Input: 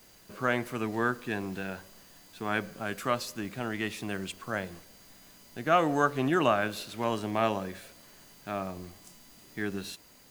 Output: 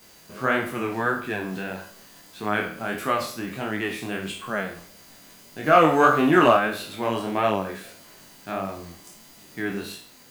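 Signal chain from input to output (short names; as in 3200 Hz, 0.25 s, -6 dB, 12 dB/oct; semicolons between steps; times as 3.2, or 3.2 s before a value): spectral trails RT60 0.50 s; 5.64–6.57 sample leveller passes 1; dynamic EQ 5900 Hz, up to -6 dB, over -50 dBFS, Q 0.97; chorus 1.6 Hz, delay 19 ms, depth 7 ms; low shelf 65 Hz -10.5 dB; gain +7.5 dB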